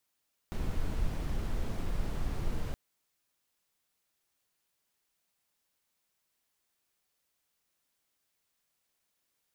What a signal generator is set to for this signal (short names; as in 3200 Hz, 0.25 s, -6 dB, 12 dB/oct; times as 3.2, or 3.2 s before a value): noise brown, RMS -31 dBFS 2.22 s